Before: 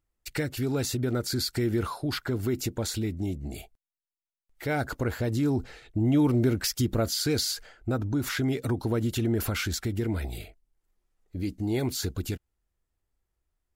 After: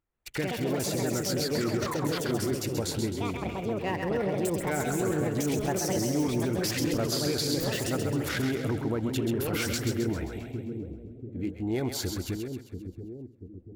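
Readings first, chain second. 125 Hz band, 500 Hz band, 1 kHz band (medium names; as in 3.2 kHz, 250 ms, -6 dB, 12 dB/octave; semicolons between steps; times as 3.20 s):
-2.5 dB, +2.5 dB, +3.0 dB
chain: local Wiener filter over 9 samples; ever faster or slower copies 134 ms, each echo +4 st, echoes 2; peak limiter -20 dBFS, peak gain reduction 7.5 dB; bass shelf 99 Hz -9 dB; on a send: two-band feedback delay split 480 Hz, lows 687 ms, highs 132 ms, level -6 dB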